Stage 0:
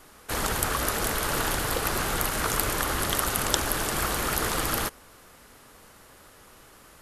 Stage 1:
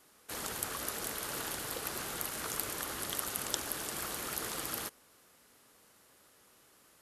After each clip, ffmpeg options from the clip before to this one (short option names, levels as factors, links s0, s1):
-af "highpass=f=280:p=1,equalizer=f=1100:w=0.46:g=-5.5,volume=0.398"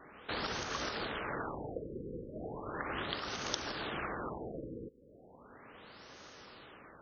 -af "acompressor=threshold=0.00447:ratio=3,afftfilt=real='re*lt(b*sr/1024,520*pow(6700/520,0.5+0.5*sin(2*PI*0.36*pts/sr)))':imag='im*lt(b*sr/1024,520*pow(6700/520,0.5+0.5*sin(2*PI*0.36*pts/sr)))':win_size=1024:overlap=0.75,volume=4.22"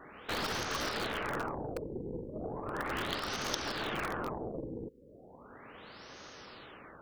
-filter_complex "[0:a]asplit=2[s0][s1];[s1]aeval=exprs='(mod(33.5*val(0)+1,2)-1)/33.5':c=same,volume=0.447[s2];[s0][s2]amix=inputs=2:normalize=0,aeval=exprs='0.211*(cos(1*acos(clip(val(0)/0.211,-1,1)))-cos(1*PI/2))+0.0119*(cos(8*acos(clip(val(0)/0.211,-1,1)))-cos(8*PI/2))':c=same"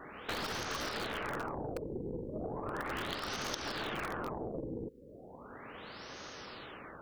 -af "acompressor=threshold=0.0112:ratio=3,volume=1.41"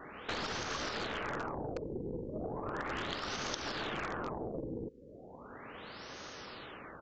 -af "aresample=16000,aresample=44100"